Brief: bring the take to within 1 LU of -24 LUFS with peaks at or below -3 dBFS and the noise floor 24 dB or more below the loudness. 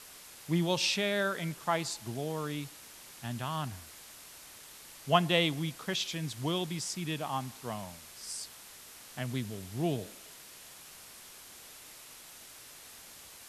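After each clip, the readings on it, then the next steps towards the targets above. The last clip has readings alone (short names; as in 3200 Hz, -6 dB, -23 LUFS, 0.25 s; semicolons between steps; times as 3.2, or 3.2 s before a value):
noise floor -52 dBFS; noise floor target -58 dBFS; loudness -33.5 LUFS; peak -10.0 dBFS; loudness target -24.0 LUFS
-> noise print and reduce 6 dB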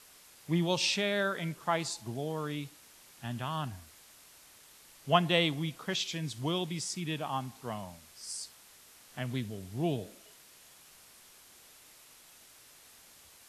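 noise floor -58 dBFS; loudness -33.0 LUFS; peak -10.0 dBFS; loudness target -24.0 LUFS
-> gain +9 dB; limiter -3 dBFS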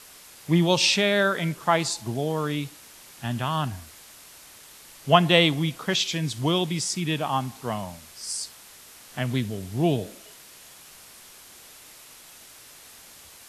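loudness -24.5 LUFS; peak -3.0 dBFS; noise floor -49 dBFS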